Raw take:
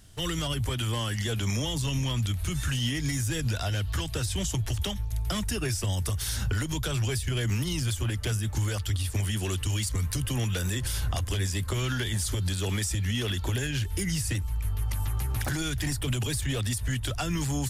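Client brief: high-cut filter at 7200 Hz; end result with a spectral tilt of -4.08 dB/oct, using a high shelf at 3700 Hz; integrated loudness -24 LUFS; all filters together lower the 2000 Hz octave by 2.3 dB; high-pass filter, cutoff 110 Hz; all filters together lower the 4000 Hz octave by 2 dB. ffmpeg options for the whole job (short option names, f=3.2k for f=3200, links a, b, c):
-af "highpass=110,lowpass=7.2k,equalizer=f=2k:t=o:g=-3.5,highshelf=f=3.7k:g=7.5,equalizer=f=4k:t=o:g=-6,volume=7.5dB"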